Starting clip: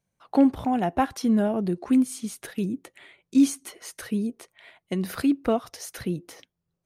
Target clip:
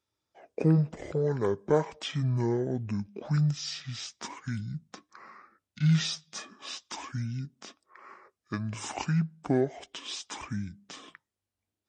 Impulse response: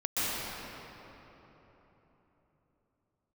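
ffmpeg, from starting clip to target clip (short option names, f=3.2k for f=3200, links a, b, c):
-af "highpass=f=500:p=1,asetrate=25442,aresample=44100"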